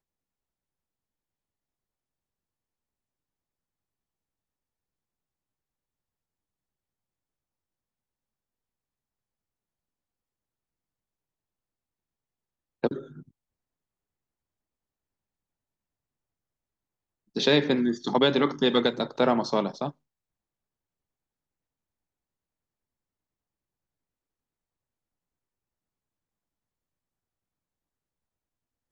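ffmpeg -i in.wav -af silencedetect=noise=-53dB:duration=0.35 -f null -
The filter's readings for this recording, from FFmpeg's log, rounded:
silence_start: 0.00
silence_end: 12.83 | silence_duration: 12.83
silence_start: 13.29
silence_end: 17.35 | silence_duration: 4.06
silence_start: 19.92
silence_end: 28.92 | silence_duration: 9.00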